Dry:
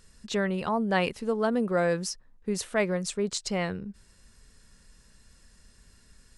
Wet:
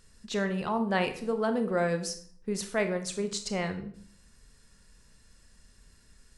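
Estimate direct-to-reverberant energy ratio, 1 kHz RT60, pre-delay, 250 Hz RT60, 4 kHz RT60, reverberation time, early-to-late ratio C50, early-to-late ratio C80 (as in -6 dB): 7.5 dB, 0.50 s, 26 ms, 0.65 s, 0.45 s, 0.55 s, 11.0 dB, 15.0 dB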